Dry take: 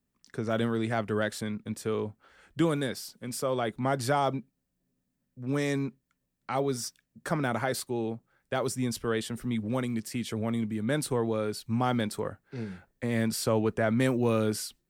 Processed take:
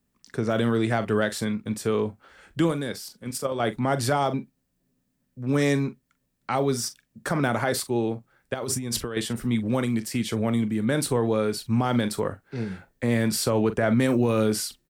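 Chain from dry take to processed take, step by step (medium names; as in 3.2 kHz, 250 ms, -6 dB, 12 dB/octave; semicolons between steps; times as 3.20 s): 2.68–3.60 s: level held to a coarse grid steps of 9 dB; doubling 42 ms -13.5 dB; 8.54–9.17 s: compressor with a negative ratio -36 dBFS, ratio -1; peak limiter -19 dBFS, peak gain reduction 5.5 dB; trim +6 dB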